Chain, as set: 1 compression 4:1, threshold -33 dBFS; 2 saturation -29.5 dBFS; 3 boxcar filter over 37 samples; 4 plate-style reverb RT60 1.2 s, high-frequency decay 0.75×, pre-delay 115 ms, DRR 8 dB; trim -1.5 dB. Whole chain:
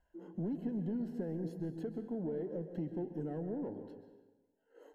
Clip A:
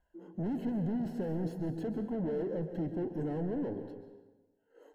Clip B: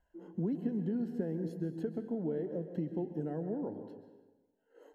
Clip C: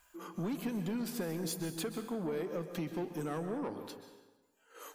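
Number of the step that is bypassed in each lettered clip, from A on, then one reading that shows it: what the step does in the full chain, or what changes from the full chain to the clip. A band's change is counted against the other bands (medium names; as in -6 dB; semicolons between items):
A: 1, mean gain reduction 12.0 dB; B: 2, distortion -14 dB; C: 3, 2 kHz band +13.5 dB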